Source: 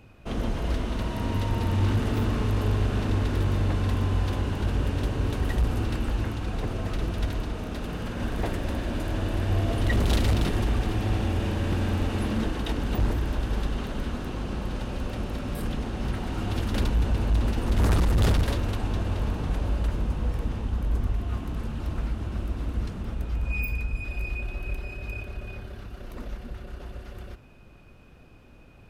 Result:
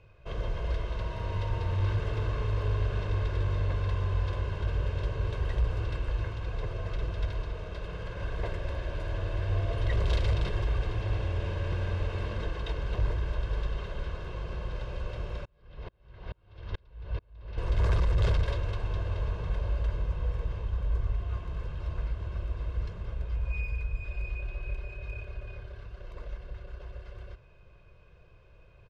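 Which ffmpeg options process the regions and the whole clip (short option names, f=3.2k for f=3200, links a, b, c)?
-filter_complex "[0:a]asettb=1/sr,asplit=3[a][b][c];[a]atrim=end=15.454[d];[b]atrim=start=15.45:end=17.58,asetpts=PTS-STARTPTS,afade=t=in:d=0.004:c=qsin,afade=t=out:st=2.126:d=0.004:c=qsin,lowpass=f=5.1k:w=0.5412,lowpass=f=5.1k:w=1.3066,aeval=exprs='val(0)*pow(10,-39*if(lt(mod(-2.3*n/s,1),2*abs(-2.3)/1000),1-mod(-2.3*n/s,1)/(2*abs(-2.3)/1000),(mod(-2.3*n/s,1)-2*abs(-2.3)/1000)/(1-2*abs(-2.3)/1000))/20)':c=same[e];[c]atrim=start=17.576[f];[d][e]acrossfade=d=0.004:c1=hsin:c2=qsin[g];[g][f]acrossfade=d=0.004:c1=qsin:c2=hsin,lowpass=4.5k,equalizer=f=240:t=o:w=0.35:g=-13.5,aecho=1:1:1.9:0.62,volume=-6.5dB"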